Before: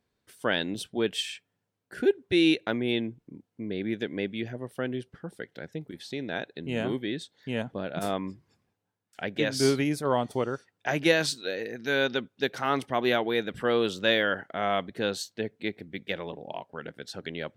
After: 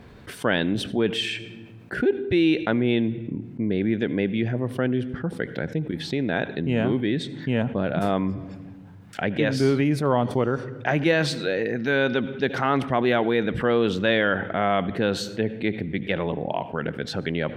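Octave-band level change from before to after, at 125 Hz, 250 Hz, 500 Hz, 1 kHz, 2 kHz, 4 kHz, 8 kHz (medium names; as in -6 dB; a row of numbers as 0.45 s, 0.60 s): +10.5 dB, +7.0 dB, +4.5 dB, +5.0 dB, +4.0 dB, +0.5 dB, -2.5 dB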